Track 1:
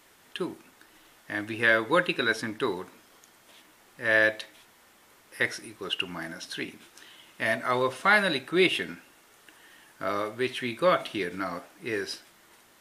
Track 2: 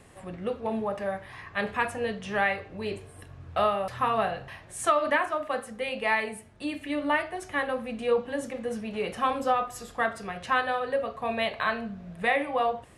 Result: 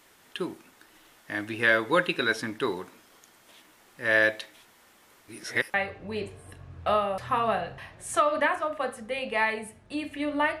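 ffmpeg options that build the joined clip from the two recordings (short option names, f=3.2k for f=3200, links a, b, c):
-filter_complex "[0:a]apad=whole_dur=10.6,atrim=end=10.6,asplit=2[a][b];[a]atrim=end=5.282[c];[b]atrim=start=5.278:end=5.742,asetpts=PTS-STARTPTS,areverse[d];[1:a]atrim=start=2.438:end=7.3[e];[c][d]acrossfade=d=0.004:c1=hsin:c2=hsin[f];[f][e]acrossfade=d=0.004:c1=hsin:c2=hsin"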